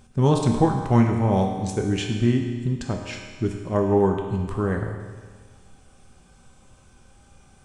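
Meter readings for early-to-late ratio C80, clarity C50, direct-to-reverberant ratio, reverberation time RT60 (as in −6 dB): 5.5 dB, 4.0 dB, 1.5 dB, 1.6 s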